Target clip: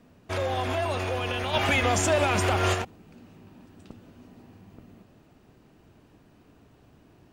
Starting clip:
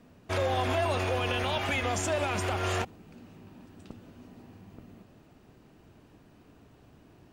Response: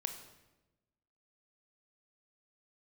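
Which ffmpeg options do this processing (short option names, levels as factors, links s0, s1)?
-filter_complex "[0:a]asplit=3[s0][s1][s2];[s0]afade=t=out:st=1.53:d=0.02[s3];[s1]acontrast=61,afade=t=in:st=1.53:d=0.02,afade=t=out:st=2.73:d=0.02[s4];[s2]afade=t=in:st=2.73:d=0.02[s5];[s3][s4][s5]amix=inputs=3:normalize=0"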